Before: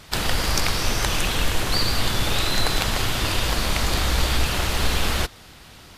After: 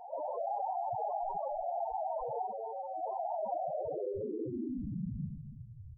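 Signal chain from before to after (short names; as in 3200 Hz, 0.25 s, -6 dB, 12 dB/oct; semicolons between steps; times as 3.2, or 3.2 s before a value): rattling part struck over -28 dBFS, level -15 dBFS; tilt shelf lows -6.5 dB, about 820 Hz; mistuned SSB -360 Hz 210–2600 Hz; 2.43–3.02 resonator 110 Hz, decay 0.54 s, harmonics all, mix 90%; low-pass sweep 750 Hz -> 100 Hz, 3.54–5.91; vibrato 1.6 Hz 37 cents; 0.61–1.77 doubler 17 ms -8 dB; reverse bouncing-ball echo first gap 40 ms, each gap 1.3×, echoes 5; loudest bins only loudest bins 4; fast leveller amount 50%; gain -8.5 dB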